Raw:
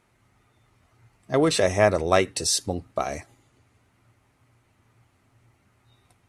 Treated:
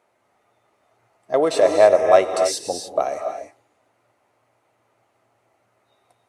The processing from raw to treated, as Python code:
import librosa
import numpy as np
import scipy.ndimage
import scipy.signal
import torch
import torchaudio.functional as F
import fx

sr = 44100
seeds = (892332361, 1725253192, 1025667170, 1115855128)

y = fx.highpass(x, sr, hz=440.0, slope=6)
y = fx.peak_eq(y, sr, hz=600.0, db=13.5, octaves=1.5)
y = fx.rev_gated(y, sr, seeds[0], gate_ms=320, shape='rising', drr_db=5.0)
y = y * 10.0 ** (-4.5 / 20.0)